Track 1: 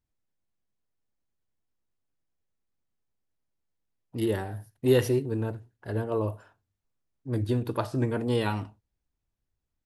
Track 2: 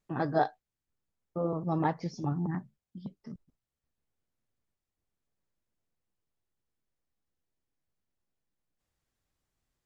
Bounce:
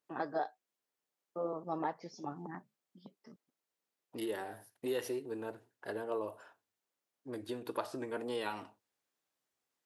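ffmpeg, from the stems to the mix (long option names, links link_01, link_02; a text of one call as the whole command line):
ffmpeg -i stem1.wav -i stem2.wav -filter_complex "[0:a]acompressor=threshold=-33dB:ratio=3,volume=0.5dB[link_01];[1:a]alimiter=limit=-20dB:level=0:latency=1:release=362,adynamicequalizer=threshold=0.00501:dfrequency=1600:dqfactor=0.7:tfrequency=1600:tqfactor=0.7:attack=5:release=100:ratio=0.375:range=2:mode=cutabove:tftype=highshelf,volume=-3dB[link_02];[link_01][link_02]amix=inputs=2:normalize=0,highpass=380" out.wav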